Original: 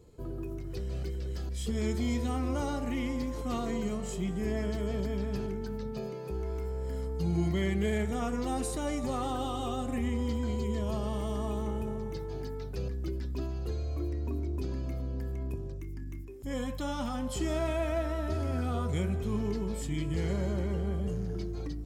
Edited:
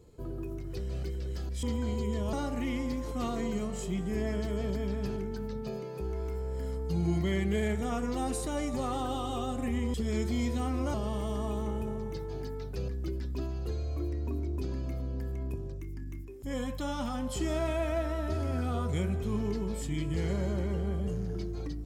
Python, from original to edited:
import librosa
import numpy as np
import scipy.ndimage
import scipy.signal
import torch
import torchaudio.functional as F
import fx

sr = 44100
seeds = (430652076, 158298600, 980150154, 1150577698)

y = fx.edit(x, sr, fx.swap(start_s=1.63, length_s=1.0, other_s=10.24, other_length_s=0.7), tone=tone)